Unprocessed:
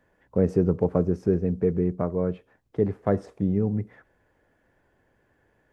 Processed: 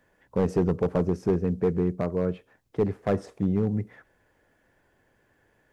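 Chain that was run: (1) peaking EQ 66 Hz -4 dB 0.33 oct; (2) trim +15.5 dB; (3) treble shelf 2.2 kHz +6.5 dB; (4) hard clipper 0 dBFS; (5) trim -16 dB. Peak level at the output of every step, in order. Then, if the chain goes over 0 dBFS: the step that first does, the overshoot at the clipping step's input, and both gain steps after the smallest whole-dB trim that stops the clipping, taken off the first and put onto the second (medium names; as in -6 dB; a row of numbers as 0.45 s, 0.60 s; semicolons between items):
-8.0 dBFS, +7.5 dBFS, +8.0 dBFS, 0.0 dBFS, -16.0 dBFS; step 2, 8.0 dB; step 2 +7.5 dB, step 5 -8 dB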